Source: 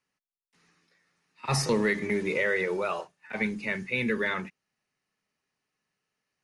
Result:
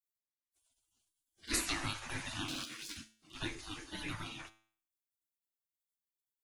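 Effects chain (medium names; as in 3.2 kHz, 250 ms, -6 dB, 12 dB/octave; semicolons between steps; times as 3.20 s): 2.48–2.97 s: comb filter that takes the minimum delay 1 ms; spectral gate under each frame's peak -25 dB weak; resonant low shelf 400 Hz +7 dB, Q 3; feedback comb 110 Hz, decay 0.5 s, harmonics all, mix 60%; trim +11.5 dB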